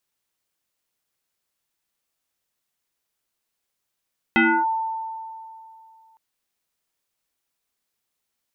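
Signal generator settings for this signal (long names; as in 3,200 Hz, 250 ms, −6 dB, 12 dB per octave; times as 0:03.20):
two-operator FM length 1.81 s, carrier 893 Hz, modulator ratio 0.63, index 3, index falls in 0.29 s linear, decay 2.63 s, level −12.5 dB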